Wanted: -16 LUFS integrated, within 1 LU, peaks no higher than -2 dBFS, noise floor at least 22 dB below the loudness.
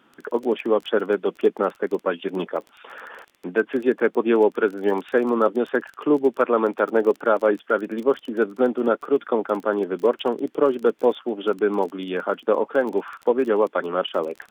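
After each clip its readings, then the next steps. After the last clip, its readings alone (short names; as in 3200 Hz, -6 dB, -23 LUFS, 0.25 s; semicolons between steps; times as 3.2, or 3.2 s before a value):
ticks 22/s; loudness -22.5 LUFS; peak -6.5 dBFS; loudness target -16.0 LUFS
-> de-click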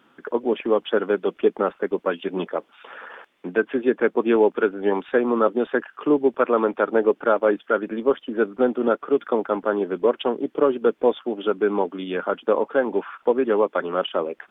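ticks 0.069/s; loudness -22.5 LUFS; peak -6.5 dBFS; loudness target -16.0 LUFS
-> gain +6.5 dB; limiter -2 dBFS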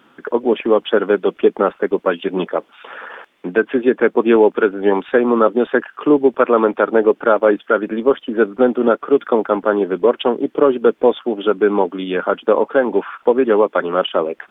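loudness -16.5 LUFS; peak -2.0 dBFS; noise floor -55 dBFS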